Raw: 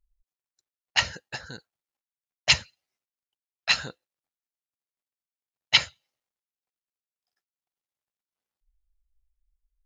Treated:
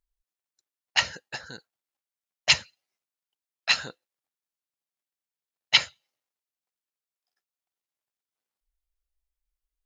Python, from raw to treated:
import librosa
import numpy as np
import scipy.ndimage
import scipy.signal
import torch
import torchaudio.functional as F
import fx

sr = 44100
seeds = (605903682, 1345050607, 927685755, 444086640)

y = fx.low_shelf(x, sr, hz=110.0, db=-12.0)